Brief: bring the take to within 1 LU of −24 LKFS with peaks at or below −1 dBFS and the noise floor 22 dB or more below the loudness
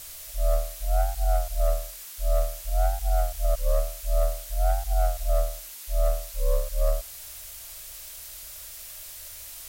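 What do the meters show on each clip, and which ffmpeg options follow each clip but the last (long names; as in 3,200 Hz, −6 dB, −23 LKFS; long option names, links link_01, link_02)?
background noise floor −42 dBFS; target noise floor −52 dBFS; integrated loudness −29.5 LKFS; sample peak −15.0 dBFS; target loudness −24.0 LKFS
→ -af "afftdn=noise_reduction=10:noise_floor=-42"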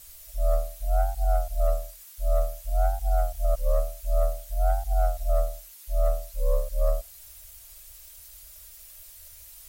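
background noise floor −48 dBFS; target noise floor −51 dBFS
→ -af "afftdn=noise_reduction=6:noise_floor=-48"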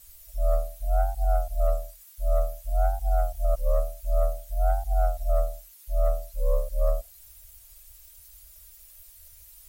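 background noise floor −51 dBFS; integrated loudness −29.0 LKFS; sample peak −16.0 dBFS; target loudness −24.0 LKFS
→ -af "volume=5dB"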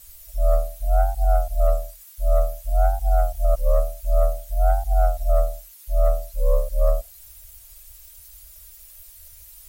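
integrated loudness −24.0 LKFS; sample peak −11.0 dBFS; background noise floor −46 dBFS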